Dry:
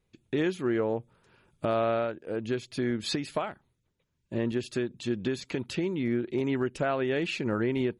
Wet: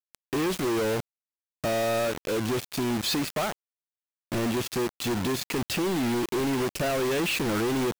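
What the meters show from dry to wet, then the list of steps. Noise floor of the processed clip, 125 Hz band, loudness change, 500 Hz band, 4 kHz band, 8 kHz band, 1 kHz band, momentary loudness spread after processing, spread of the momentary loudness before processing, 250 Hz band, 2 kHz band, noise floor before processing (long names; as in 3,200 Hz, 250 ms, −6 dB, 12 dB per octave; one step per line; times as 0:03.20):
below −85 dBFS, +2.0 dB, +3.0 dB, +1.5 dB, +7.0 dB, +12.5 dB, +4.0 dB, 5 LU, 6 LU, +2.0 dB, +4.5 dB, −77 dBFS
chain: log-companded quantiser 2 bits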